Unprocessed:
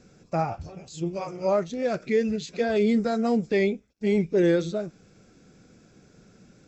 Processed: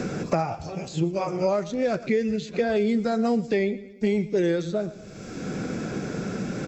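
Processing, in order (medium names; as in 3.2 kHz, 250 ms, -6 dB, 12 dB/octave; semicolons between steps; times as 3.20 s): on a send: feedback delay 116 ms, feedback 31%, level -19 dB; on the sum: three bands compressed up and down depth 100%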